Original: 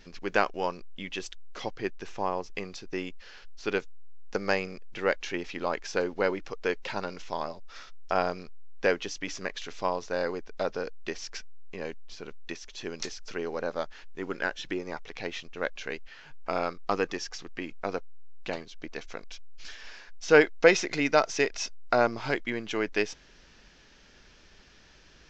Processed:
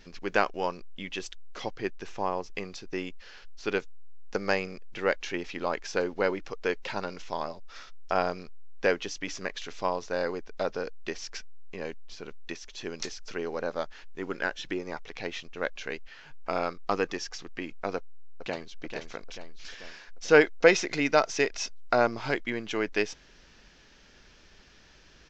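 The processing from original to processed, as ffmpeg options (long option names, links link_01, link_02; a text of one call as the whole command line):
ffmpeg -i in.wav -filter_complex "[0:a]asplit=2[link_01][link_02];[link_02]afade=type=in:start_time=17.96:duration=0.01,afade=type=out:start_time=18.72:duration=0.01,aecho=0:1:440|880|1320|1760|2200|2640|3080|3520:0.421697|0.253018|0.151811|0.0910864|0.0546519|0.0327911|0.0196747|0.0118048[link_03];[link_01][link_03]amix=inputs=2:normalize=0" out.wav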